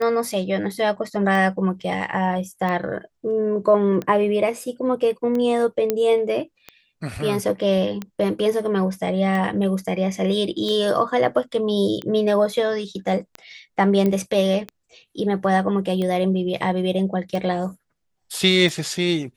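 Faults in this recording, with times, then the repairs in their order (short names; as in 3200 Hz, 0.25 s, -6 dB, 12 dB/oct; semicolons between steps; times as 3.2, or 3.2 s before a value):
tick 45 rpm -16 dBFS
5.9 pop -7 dBFS
14.06 pop -11 dBFS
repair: de-click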